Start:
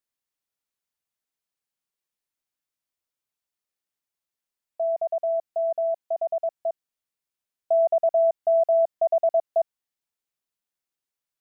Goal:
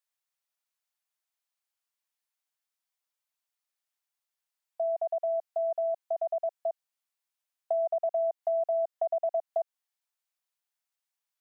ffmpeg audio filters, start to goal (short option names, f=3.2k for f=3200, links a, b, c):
-af "highpass=f=610:w=0.5412,highpass=f=610:w=1.3066,acompressor=threshold=-27dB:ratio=4"